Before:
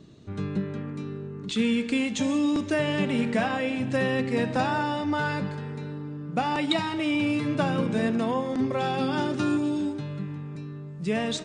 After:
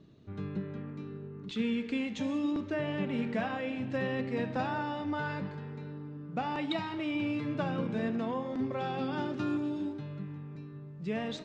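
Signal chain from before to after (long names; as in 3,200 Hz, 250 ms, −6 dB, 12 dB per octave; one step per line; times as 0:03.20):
0:02.52–0:03.13: high-shelf EQ 3,800 Hz −6.5 dB
flanger 0.68 Hz, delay 5.9 ms, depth 8.1 ms, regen −89%
high-frequency loss of the air 130 metres
level −2.5 dB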